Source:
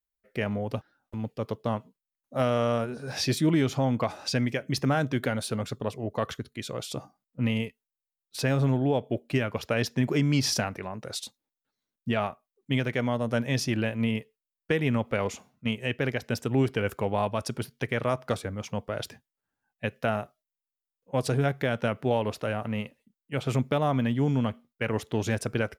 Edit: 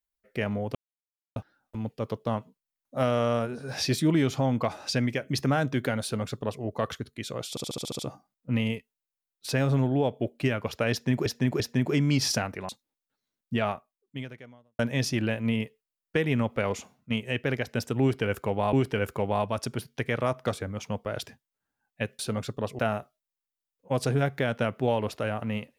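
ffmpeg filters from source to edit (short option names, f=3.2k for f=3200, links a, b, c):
-filter_complex "[0:a]asplit=16[a][b][c][d][e][f][g][h][i][j][k][l][m][n][o][p];[a]atrim=end=0.75,asetpts=PTS-STARTPTS,afade=t=out:st=0.746:d=0.004:c=hsin,apad=pad_dur=0.61[q];[b]atrim=start=0.75:end=6.962,asetpts=PTS-STARTPTS,afade=t=in:d=0.004:c=hsin[r];[c]atrim=start=6.888:end=6.962[s];[d]atrim=start=6.888:end=6.962[t];[e]atrim=start=6.888:end=6.962[u];[f]atrim=start=6.888:end=6.962[v];[g]atrim=start=6.888:end=6.962[w];[h]atrim=start=6.888:end=6.962[x];[i]atrim=start=6.888:end=10.162[y];[j]atrim=start=9.818:end=10.162[z];[k]atrim=start=9.818:end=10.912[aa];[l]atrim=start=11.238:end=13.34,asetpts=PTS-STARTPTS,afade=t=out:st=1.032:d=1.07:c=qua[ab];[m]atrim=start=13.34:end=17.282,asetpts=PTS-STARTPTS,afade=t=in:d=0.004:c=hsin[ac];[n]atrim=start=16.558:end=20.022[ad];[o]atrim=start=5.418:end=6.022[ae];[p]atrim=start=20.018[af];[q][r]concat=n=2:v=0:a=1[ag];[ag][s]acrossfade=d=0.004:c1=hsin:c2=hsin[ah];[ah][t]acrossfade=d=0.004:c1=hsin:c2=hsin[ai];[ai][u]acrossfade=d=0.004:c1=hsin:c2=hsin[aj];[aj][v]acrossfade=d=0.004:c1=hsin:c2=hsin[ak];[ak][w]acrossfade=d=0.004:c1=hsin:c2=hsin[al];[al][x]acrossfade=d=0.004:c1=hsin:c2=hsin[am];[am][y]acrossfade=d=0.004:c1=hsin:c2=hsin[an];[an][z]acrossfade=d=0.004:c1=hsin:c2=hsin[ao];[ao][aa]acrossfade=d=0.004:c1=hsin:c2=hsin[ap];[ab][ac]concat=n=2:v=0:a=1[aq];[ap][aq]acrossfade=d=0.004:c1=hsin:c2=hsin[ar];[ar][ad]acrossfade=d=0.004:c1=hsin:c2=hsin[as];[as][ae]acrossfade=d=0.004:c1=hsin:c2=hsin[at];[at][af]acrossfade=d=0.004:c1=hsin:c2=hsin"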